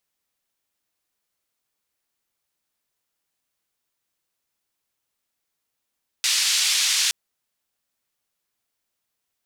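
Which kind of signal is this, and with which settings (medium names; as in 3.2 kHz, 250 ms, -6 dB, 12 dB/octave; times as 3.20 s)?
noise band 2.9–5.8 kHz, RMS -21 dBFS 0.87 s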